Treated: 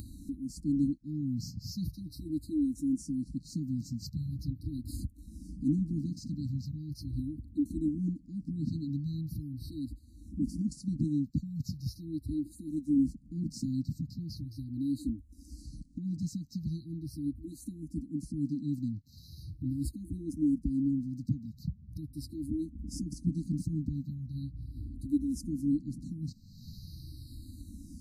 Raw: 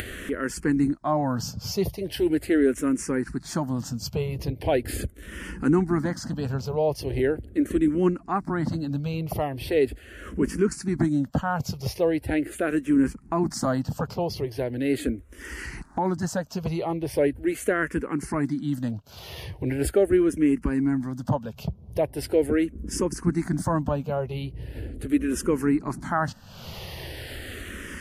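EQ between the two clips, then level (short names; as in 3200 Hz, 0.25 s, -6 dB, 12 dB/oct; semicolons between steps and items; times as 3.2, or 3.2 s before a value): brick-wall FIR band-stop 320–3800 Hz; bell 11000 Hz -9 dB 2.2 oct; -5.5 dB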